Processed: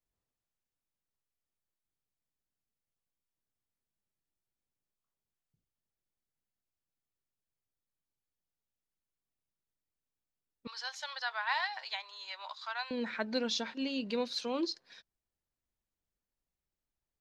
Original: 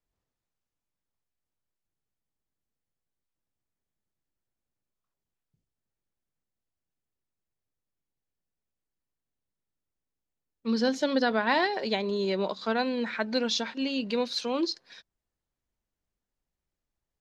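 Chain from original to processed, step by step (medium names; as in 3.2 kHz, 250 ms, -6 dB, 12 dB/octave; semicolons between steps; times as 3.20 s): 10.67–12.91 s: steep high-pass 830 Hz 36 dB/octave; trim -5.5 dB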